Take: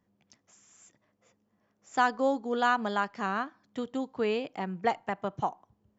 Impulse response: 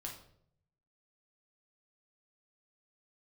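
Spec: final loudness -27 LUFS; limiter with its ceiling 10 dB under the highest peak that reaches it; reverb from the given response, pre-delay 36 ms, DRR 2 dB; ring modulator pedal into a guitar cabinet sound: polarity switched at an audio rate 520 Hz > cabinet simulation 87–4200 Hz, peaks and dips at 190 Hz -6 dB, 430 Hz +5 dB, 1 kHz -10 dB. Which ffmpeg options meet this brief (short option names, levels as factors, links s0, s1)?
-filter_complex "[0:a]alimiter=limit=0.0794:level=0:latency=1,asplit=2[s0][s1];[1:a]atrim=start_sample=2205,adelay=36[s2];[s1][s2]afir=irnorm=-1:irlink=0,volume=1.06[s3];[s0][s3]amix=inputs=2:normalize=0,aeval=exprs='val(0)*sgn(sin(2*PI*520*n/s))':c=same,highpass=87,equalizer=f=190:t=q:w=4:g=-6,equalizer=f=430:t=q:w=4:g=5,equalizer=f=1000:t=q:w=4:g=-10,lowpass=f=4200:w=0.5412,lowpass=f=4200:w=1.3066,volume=2.24"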